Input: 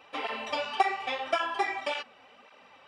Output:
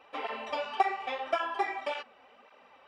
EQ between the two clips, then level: bell 130 Hz -11.5 dB 0.93 oct; bell 290 Hz -2.5 dB 0.26 oct; high shelf 2400 Hz -9.5 dB; 0.0 dB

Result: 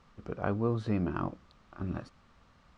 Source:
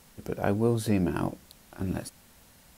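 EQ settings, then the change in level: Gaussian blur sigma 1.8 samples; low shelf 110 Hz +5 dB; bell 1200 Hz +12.5 dB 0.33 oct; -6.0 dB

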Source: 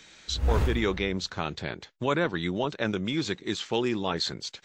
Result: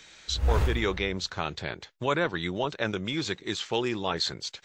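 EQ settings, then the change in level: bell 230 Hz -5.5 dB 1.3 oct; +1.0 dB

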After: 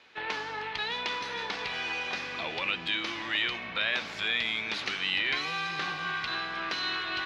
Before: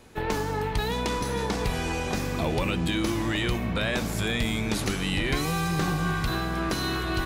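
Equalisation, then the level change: band-pass 2800 Hz, Q 0.74; air absorption 260 m; high shelf 2900 Hz +11.5 dB; +2.0 dB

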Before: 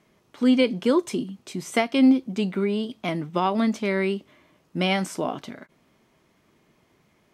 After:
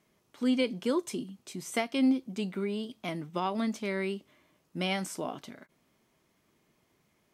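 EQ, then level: high shelf 5900 Hz +8.5 dB; -8.5 dB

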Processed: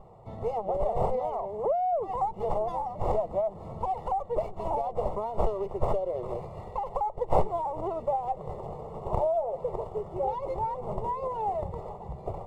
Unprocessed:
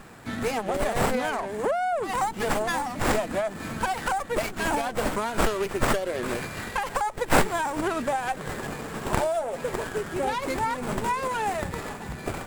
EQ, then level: polynomial smoothing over 65 samples; fixed phaser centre 640 Hz, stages 4; 0.0 dB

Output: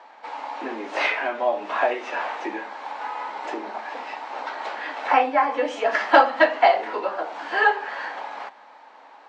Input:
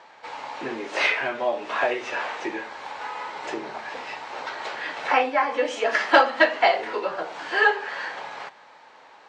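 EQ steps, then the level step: rippled Chebyshev high-pass 200 Hz, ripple 6 dB; high shelf 5900 Hz -6.5 dB; +4.0 dB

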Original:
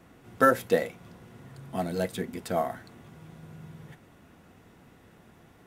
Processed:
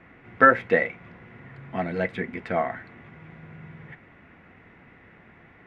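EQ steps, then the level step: synth low-pass 2100 Hz, resonance Q 3.8; +1.5 dB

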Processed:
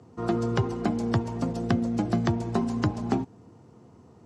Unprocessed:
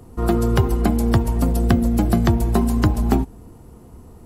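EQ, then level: Chebyshev band-pass 110–6400 Hz, order 3; -6.0 dB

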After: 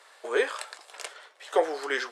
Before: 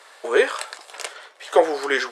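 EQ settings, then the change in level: low shelf 150 Hz -9 dB; -7.0 dB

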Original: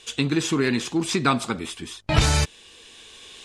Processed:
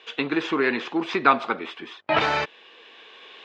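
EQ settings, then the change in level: BPF 470–2600 Hz; air absorption 140 m; +6.0 dB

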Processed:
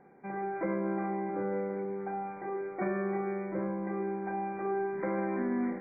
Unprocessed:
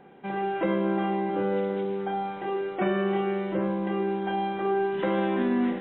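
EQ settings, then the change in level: brick-wall FIR low-pass 2400 Hz; -6.5 dB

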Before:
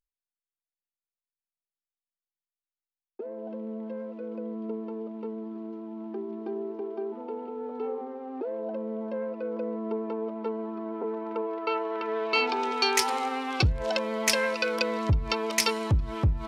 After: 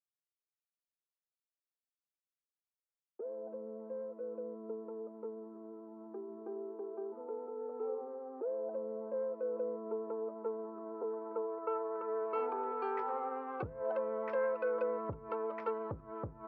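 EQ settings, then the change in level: HPF 130 Hz 12 dB/oct; ladder low-pass 1500 Hz, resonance 50%; bell 500 Hz +12 dB 0.81 oct; -6.5 dB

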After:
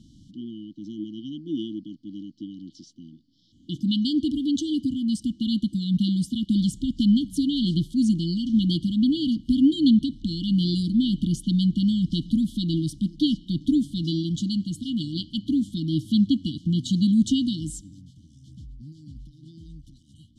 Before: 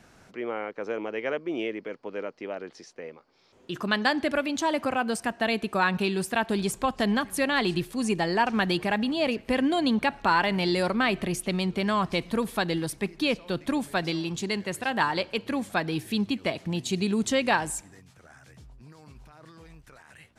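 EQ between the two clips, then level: brick-wall FIR band-stop 330–2900 Hz; air absorption 51 m; high shelf 2700 Hz -8 dB; +8.0 dB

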